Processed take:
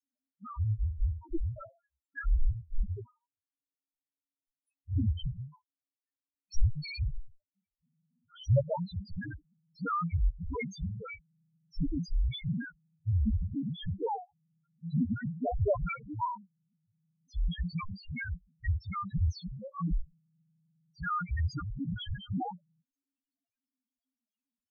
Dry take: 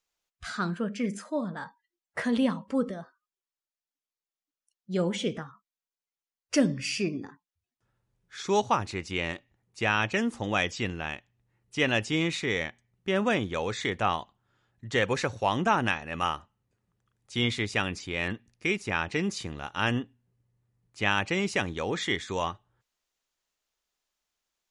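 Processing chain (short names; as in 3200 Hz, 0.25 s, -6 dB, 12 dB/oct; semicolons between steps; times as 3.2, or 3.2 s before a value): frequency shift -280 Hz; loudest bins only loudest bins 1; gain +7 dB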